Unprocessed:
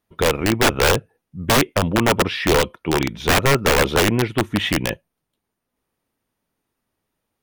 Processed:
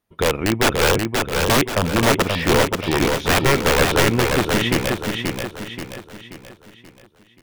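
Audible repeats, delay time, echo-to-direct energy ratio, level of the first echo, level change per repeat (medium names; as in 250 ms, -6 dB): 5, 531 ms, -3.0 dB, -4.0 dB, -7.0 dB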